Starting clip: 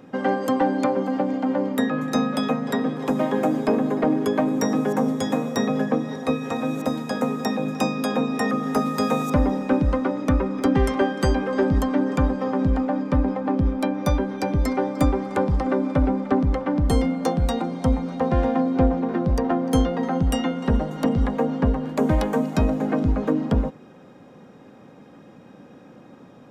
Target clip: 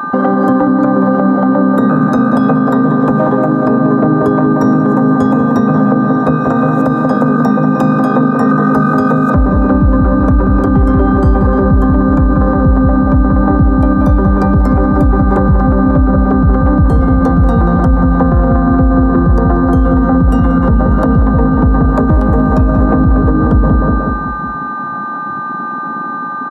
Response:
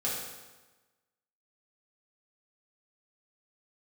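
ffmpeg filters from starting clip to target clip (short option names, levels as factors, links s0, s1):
-filter_complex "[0:a]highpass=44,asplit=2[s0][s1];[s1]adelay=183,lowpass=f=1500:p=1,volume=0.562,asplit=2[s2][s3];[s3]adelay=183,lowpass=f=1500:p=1,volume=0.51,asplit=2[s4][s5];[s5]adelay=183,lowpass=f=1500:p=1,volume=0.51,asplit=2[s6][s7];[s7]adelay=183,lowpass=f=1500:p=1,volume=0.51,asplit=2[s8][s9];[s9]adelay=183,lowpass=f=1500:p=1,volume=0.51,asplit=2[s10][s11];[s11]adelay=183,lowpass=f=1500:p=1,volume=0.51[s12];[s0][s2][s4][s6][s8][s10][s12]amix=inputs=7:normalize=0,acrossover=split=190[s13][s14];[s14]acompressor=threshold=0.0316:ratio=5[s15];[s13][s15]amix=inputs=2:normalize=0,aeval=exprs='val(0)+0.0178*sin(2*PI*1200*n/s)':c=same,afwtdn=0.0251,asplit=2[s16][s17];[1:a]atrim=start_sample=2205,adelay=113[s18];[s17][s18]afir=irnorm=-1:irlink=0,volume=0.0668[s19];[s16][s19]amix=inputs=2:normalize=0,alimiter=level_in=10.6:limit=0.891:release=50:level=0:latency=1,volume=0.891"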